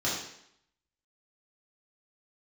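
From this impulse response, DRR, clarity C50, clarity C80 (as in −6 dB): −7.5 dB, 2.5 dB, 6.0 dB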